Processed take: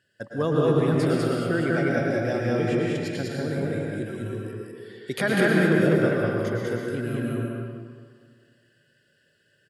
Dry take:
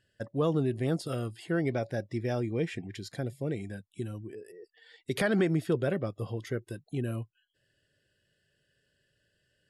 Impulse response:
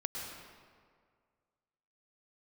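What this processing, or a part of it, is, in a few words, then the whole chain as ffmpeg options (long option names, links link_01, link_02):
stadium PA: -filter_complex "[0:a]highpass=130,equalizer=frequency=1500:width_type=o:width=0.4:gain=5,aecho=1:1:198.3|247.8:0.891|0.316[link_01];[1:a]atrim=start_sample=2205[link_02];[link_01][link_02]afir=irnorm=-1:irlink=0,volume=3.5dB"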